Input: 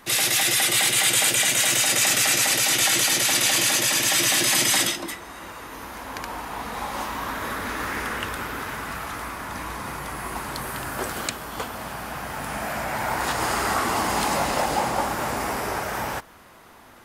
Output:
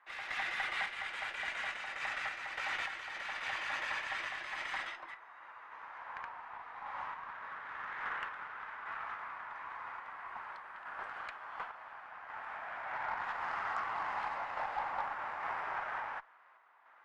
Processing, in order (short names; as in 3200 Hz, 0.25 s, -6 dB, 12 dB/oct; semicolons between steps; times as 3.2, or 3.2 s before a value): Butterworth band-pass 1300 Hz, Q 0.99; added harmonics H 4 -32 dB, 6 -25 dB, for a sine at -12.5 dBFS; random-step tremolo; gain -7.5 dB